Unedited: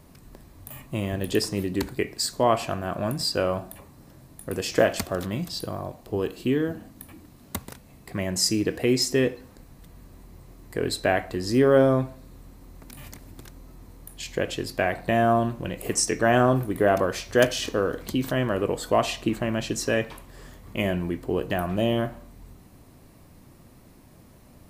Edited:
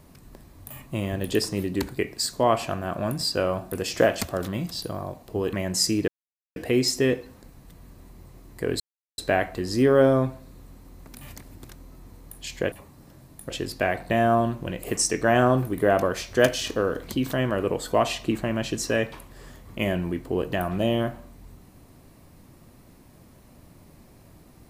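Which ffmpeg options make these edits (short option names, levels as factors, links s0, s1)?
-filter_complex "[0:a]asplit=7[s0][s1][s2][s3][s4][s5][s6];[s0]atrim=end=3.722[s7];[s1]atrim=start=4.498:end=6.312[s8];[s2]atrim=start=8.148:end=8.7,asetpts=PTS-STARTPTS,afade=t=out:st=0.548:d=0.004:c=hsin,apad=pad_dur=0.48[s9];[s3]atrim=start=8.7:end=10.94,asetpts=PTS-STARTPTS,afade=t=in:d=0.004:c=hsin,afade=t=out:st=2.236:d=0.004:c=hsin,apad=pad_dur=0.38[s10];[s4]atrim=start=10.94:end=14.482,asetpts=PTS-STARTPTS,afade=t=in:d=0.004:c=hsin[s11];[s5]atrim=start=3.718:end=4.502[s12];[s6]atrim=start=14.478[s13];[s7][s8]acrossfade=d=0.004:c1=hsin:c2=hsin[s14];[s9][s10][s11]concat=n=3:v=0:a=1[s15];[s14][s15]acrossfade=d=0.004:c1=hsin:c2=hsin[s16];[s16][s12]acrossfade=d=0.004:c1=hsin:c2=hsin[s17];[s17][s13]acrossfade=d=0.004:c1=hsin:c2=hsin"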